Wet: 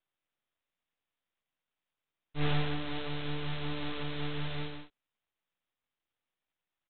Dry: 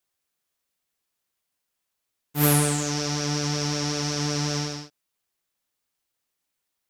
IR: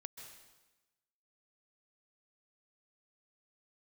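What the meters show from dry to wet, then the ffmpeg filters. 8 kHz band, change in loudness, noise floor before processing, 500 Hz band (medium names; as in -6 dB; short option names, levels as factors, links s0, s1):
under -40 dB, -12.0 dB, -81 dBFS, -10.0 dB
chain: -af "bandreject=f=390:w=12,aresample=8000,aeval=exprs='max(val(0),0)':c=same,aresample=44100"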